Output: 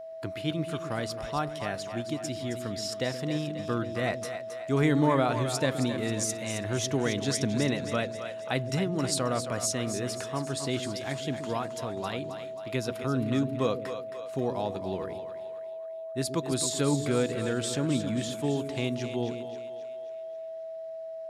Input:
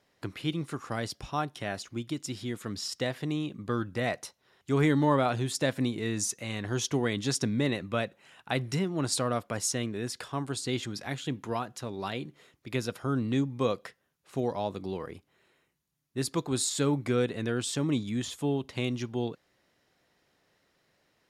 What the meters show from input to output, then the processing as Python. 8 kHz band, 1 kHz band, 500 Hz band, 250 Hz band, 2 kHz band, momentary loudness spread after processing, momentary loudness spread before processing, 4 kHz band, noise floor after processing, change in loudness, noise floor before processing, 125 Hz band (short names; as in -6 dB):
+0.5 dB, +1.0 dB, +3.0 dB, +0.5 dB, +0.5 dB, 11 LU, 10 LU, +0.5 dB, -39 dBFS, +0.5 dB, -74 dBFS, +0.5 dB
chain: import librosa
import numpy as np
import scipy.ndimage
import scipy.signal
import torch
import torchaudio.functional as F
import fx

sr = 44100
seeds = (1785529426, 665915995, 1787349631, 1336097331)

y = x + 10.0 ** (-39.0 / 20.0) * np.sin(2.0 * np.pi * 650.0 * np.arange(len(x)) / sr)
y = fx.echo_split(y, sr, split_hz=450.0, low_ms=125, high_ms=268, feedback_pct=52, wet_db=-9)